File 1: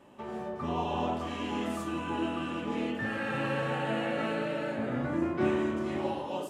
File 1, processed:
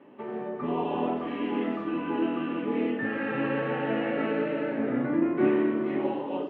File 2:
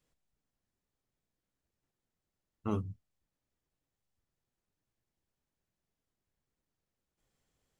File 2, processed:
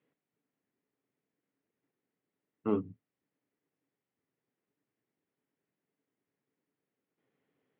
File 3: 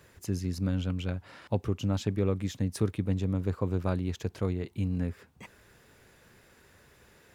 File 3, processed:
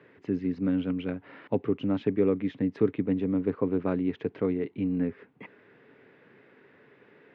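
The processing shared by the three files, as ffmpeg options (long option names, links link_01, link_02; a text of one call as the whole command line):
ffmpeg -i in.wav -af "highpass=frequency=130:width=0.5412,highpass=frequency=130:width=1.3066,equalizer=frequency=280:width_type=q:width=4:gain=9,equalizer=frequency=430:width_type=q:width=4:gain=8,equalizer=frequency=2000:width_type=q:width=4:gain=4,lowpass=frequency=2900:width=0.5412,lowpass=frequency=2900:width=1.3066" out.wav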